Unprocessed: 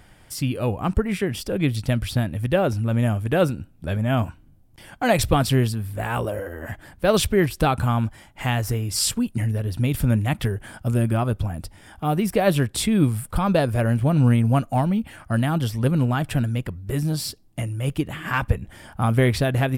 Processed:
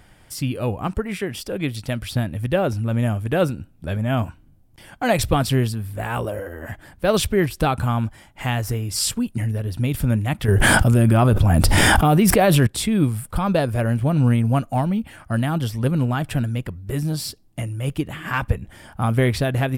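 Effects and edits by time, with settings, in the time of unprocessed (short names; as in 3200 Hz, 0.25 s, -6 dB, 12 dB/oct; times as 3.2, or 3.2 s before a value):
0.87–2.15 low shelf 240 Hz -6.5 dB
10.48–12.67 fast leveller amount 100%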